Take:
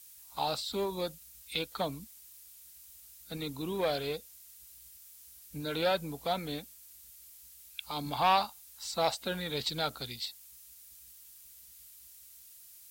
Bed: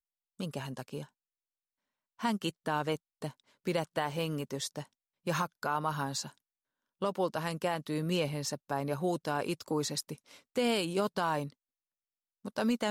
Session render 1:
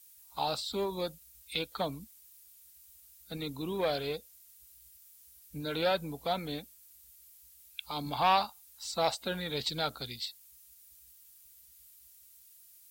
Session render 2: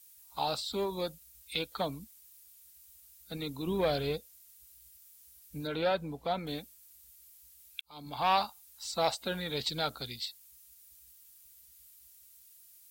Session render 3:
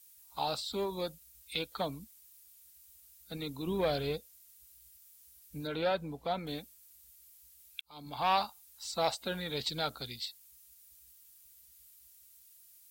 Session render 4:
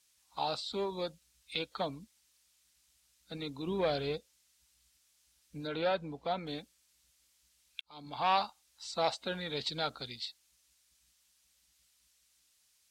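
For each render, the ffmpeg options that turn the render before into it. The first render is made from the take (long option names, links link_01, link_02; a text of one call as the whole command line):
ffmpeg -i in.wav -af "afftdn=noise_reduction=6:noise_floor=-55" out.wav
ffmpeg -i in.wav -filter_complex "[0:a]asettb=1/sr,asplit=3[link_01][link_02][link_03];[link_01]atrim=end=3.674[link_04];[link_02]atrim=start=3.67:end=4.18,asetpts=PTS-STARTPTS,afade=type=in:duration=0.004:curve=qsin,afade=type=out:start_time=0.506:duration=0.004:curve=qsin,lowshelf=frequency=210:gain=10[link_05];[link_03]atrim=start=4.176[link_06];[link_04][link_05]acrossfade=duration=0.004:curve1=hsin:curve2=qsin[link_07];[link_07][link_06]acrossfade=duration=0.004:curve1=qsin:curve2=hsin,asettb=1/sr,asplit=3[link_08][link_09][link_10];[link_08]atrim=end=5.674[link_11];[link_09]atrim=start=5.67:end=6.47,asetpts=PTS-STARTPTS,afade=type=in:duration=0.004:curve=qsin,afade=type=out:start_time=0.796:duration=0.004:curve=qsin,lowpass=frequency=2700:poles=1[link_12];[link_10]atrim=start=6.466[link_13];[link_11][link_12]acrossfade=duration=0.004:curve1=hsin:curve2=qsin[link_14];[link_14][link_13]acrossfade=duration=0.004:curve1=qsin:curve2=hsin,asplit=2[link_15][link_16];[link_15]atrim=end=7.81,asetpts=PTS-STARTPTS,afade=type=out:start_time=7.806:duration=0.004:curve=hsin[link_17];[link_16]atrim=start=7.81,asetpts=PTS-STARTPTS,afade=type=in:duration=0.6[link_18];[link_17][link_18]concat=n=2:v=0:a=1" out.wav
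ffmpeg -i in.wav -af "volume=-1.5dB" out.wav
ffmpeg -i in.wav -af "lowpass=6000,lowshelf=frequency=94:gain=-8.5" out.wav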